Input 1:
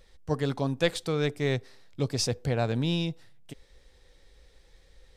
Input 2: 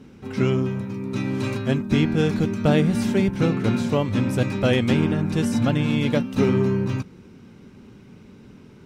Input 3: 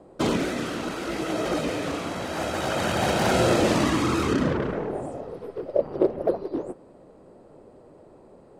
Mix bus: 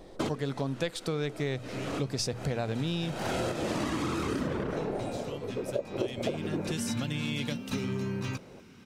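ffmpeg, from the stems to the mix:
ffmpeg -i stem1.wav -i stem2.wav -i stem3.wav -filter_complex "[0:a]bandreject=frequency=60:width_type=h:width=6,bandreject=frequency=120:width_type=h:width=6,volume=2.5dB,asplit=2[link_01][link_02];[1:a]tiltshelf=frequency=860:gain=-5.5,acrossover=split=290|3000[link_03][link_04][link_05];[link_04]acompressor=threshold=-33dB:ratio=6[link_06];[link_03][link_06][link_05]amix=inputs=3:normalize=0,adelay=1350,volume=-3.5dB,afade=type=in:start_time=5.78:duration=0.64:silence=0.334965[link_07];[2:a]volume=-1dB[link_08];[link_02]apad=whole_len=379212[link_09];[link_08][link_09]sidechaincompress=threshold=-42dB:ratio=3:attack=6.1:release=329[link_10];[link_01][link_07][link_10]amix=inputs=3:normalize=0,acompressor=threshold=-28dB:ratio=6" out.wav

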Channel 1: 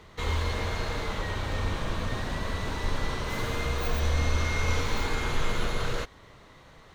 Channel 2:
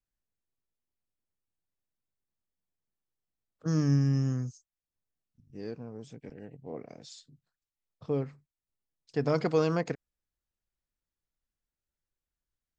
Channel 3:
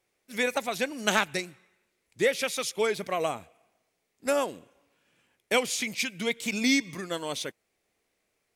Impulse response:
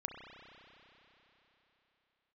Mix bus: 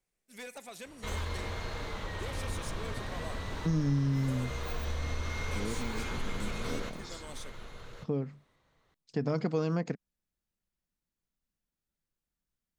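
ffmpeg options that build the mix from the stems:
-filter_complex "[0:a]adelay=850,volume=-6.5dB,asplit=2[link_01][link_02];[link_02]volume=-12dB[link_03];[1:a]equalizer=frequency=200:width_type=o:width=0.86:gain=9,volume=0dB[link_04];[2:a]equalizer=frequency=8500:width_type=o:width=0.7:gain=7.5,asoftclip=type=tanh:threshold=-26dB,volume=-15dB,asplit=2[link_05][link_06];[link_06]volume=-10.5dB[link_07];[3:a]atrim=start_sample=2205[link_08];[link_07][link_08]afir=irnorm=-1:irlink=0[link_09];[link_03]aecho=0:1:1142:1[link_10];[link_01][link_04][link_05][link_09][link_10]amix=inputs=5:normalize=0,acompressor=threshold=-31dB:ratio=2"

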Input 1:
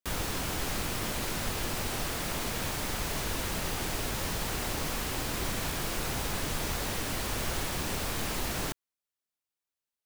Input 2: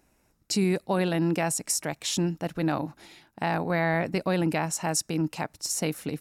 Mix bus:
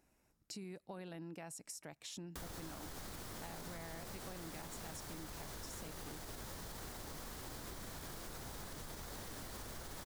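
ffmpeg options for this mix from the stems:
ffmpeg -i stem1.wav -i stem2.wav -filter_complex "[0:a]equalizer=frequency=2600:width_type=o:width=0.58:gain=-7,alimiter=level_in=5dB:limit=-24dB:level=0:latency=1:release=141,volume=-5dB,adelay=2300,volume=-4.5dB[link_01];[1:a]acompressor=threshold=-53dB:ratio=1.5,volume=-8.5dB[link_02];[link_01][link_02]amix=inputs=2:normalize=0,acompressor=threshold=-45dB:ratio=4" out.wav

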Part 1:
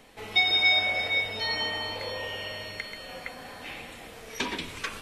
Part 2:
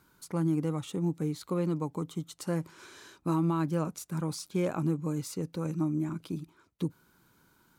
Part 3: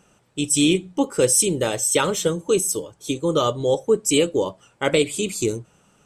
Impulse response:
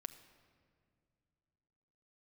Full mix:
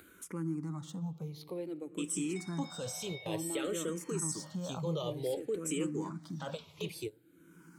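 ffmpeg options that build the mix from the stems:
-filter_complex "[0:a]adelay=2000,volume=-15.5dB[link_01];[1:a]volume=-3.5dB,asplit=3[link_02][link_03][link_04];[link_03]volume=-4dB[link_05];[2:a]aeval=exprs='sgn(val(0))*max(abs(val(0))-0.00299,0)':channel_layout=same,alimiter=limit=-16.5dB:level=0:latency=1:release=18,adelay=1600,volume=-9.5dB[link_06];[link_04]apad=whole_len=337425[link_07];[link_06][link_07]sidechaingate=range=-24dB:threshold=-57dB:ratio=16:detection=peak[link_08];[link_01][link_02]amix=inputs=2:normalize=0,agate=range=-16dB:threshold=-55dB:ratio=16:detection=peak,acompressor=threshold=-42dB:ratio=6,volume=0dB[link_09];[3:a]atrim=start_sample=2205[link_10];[link_05][link_10]afir=irnorm=-1:irlink=0[link_11];[link_08][link_09][link_11]amix=inputs=3:normalize=0,highpass=77,acompressor=mode=upward:threshold=-40dB:ratio=2.5,asplit=2[link_12][link_13];[link_13]afreqshift=-0.55[link_14];[link_12][link_14]amix=inputs=2:normalize=1"

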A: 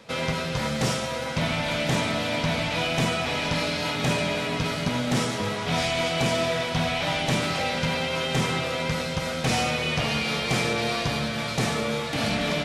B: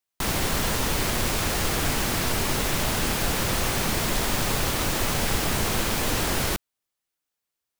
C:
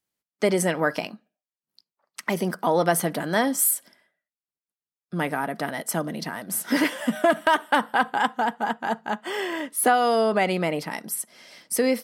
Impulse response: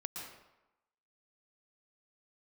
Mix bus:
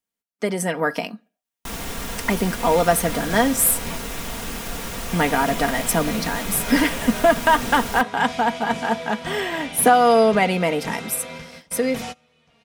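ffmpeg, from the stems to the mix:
-filter_complex "[0:a]adelay=2500,volume=-8.5dB[link_01];[1:a]adelay=1450,volume=-6dB[link_02];[2:a]dynaudnorm=framelen=150:gausssize=11:maxgain=13dB,volume=-3.5dB,asplit=2[link_03][link_04];[link_04]apad=whole_len=667968[link_05];[link_01][link_05]sidechaingate=range=-27dB:threshold=-45dB:ratio=16:detection=peak[link_06];[link_06][link_02][link_03]amix=inputs=3:normalize=0,equalizer=frequency=4400:width=4.8:gain=-3.5,aecho=1:1:4.3:0.45"

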